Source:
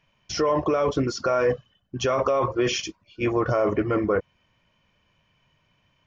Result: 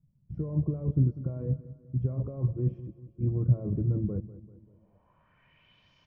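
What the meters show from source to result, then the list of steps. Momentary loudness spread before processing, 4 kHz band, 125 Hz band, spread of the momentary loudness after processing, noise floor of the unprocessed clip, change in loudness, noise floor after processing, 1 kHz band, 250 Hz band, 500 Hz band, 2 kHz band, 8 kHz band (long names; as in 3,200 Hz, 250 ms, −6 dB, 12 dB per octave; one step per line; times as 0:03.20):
7 LU, below −30 dB, +6.5 dB, 11 LU, −68 dBFS, −6.0 dB, −67 dBFS, below −30 dB, −6.0 dB, −18.5 dB, below −35 dB, can't be measured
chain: low-pass filter sweep 150 Hz → 5,100 Hz, 0:04.18–0:05.93
repeating echo 195 ms, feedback 49%, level −16 dB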